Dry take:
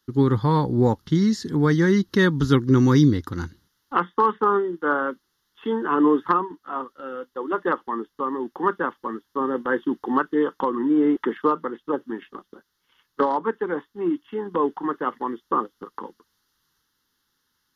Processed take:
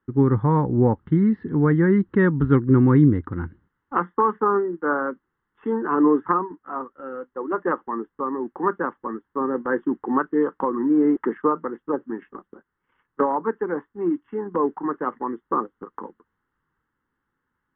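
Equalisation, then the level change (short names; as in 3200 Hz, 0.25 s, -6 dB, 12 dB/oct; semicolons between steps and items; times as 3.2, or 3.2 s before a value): LPF 2300 Hz 24 dB/oct; air absorption 460 m; +1.5 dB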